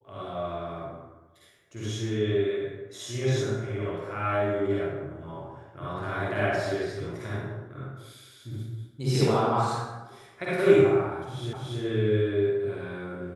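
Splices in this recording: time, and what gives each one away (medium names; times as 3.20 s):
11.53 s: repeat of the last 0.28 s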